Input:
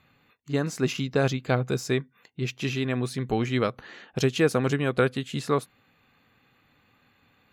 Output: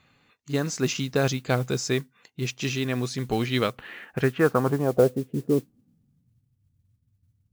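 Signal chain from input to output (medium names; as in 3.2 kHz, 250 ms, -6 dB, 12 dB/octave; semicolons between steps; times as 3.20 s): low-pass sweep 6.4 kHz -> 100 Hz, 3.19–6.51 s; modulation noise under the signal 24 dB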